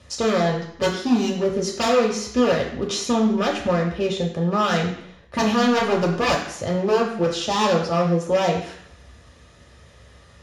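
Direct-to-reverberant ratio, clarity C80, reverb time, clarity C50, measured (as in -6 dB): -1.0 dB, 9.0 dB, 0.65 s, 6.5 dB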